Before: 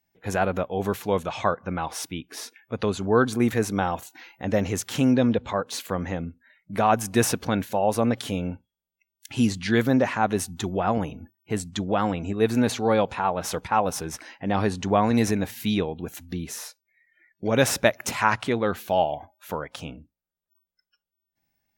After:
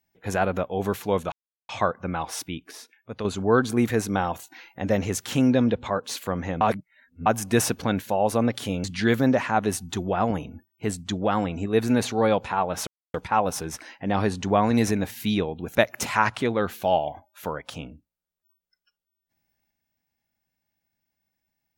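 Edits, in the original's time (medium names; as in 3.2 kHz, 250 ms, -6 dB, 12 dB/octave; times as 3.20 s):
1.32 s: insert silence 0.37 s
2.34–2.88 s: gain -6.5 dB
6.24–6.89 s: reverse
8.47–9.51 s: delete
13.54 s: insert silence 0.27 s
16.15–17.81 s: delete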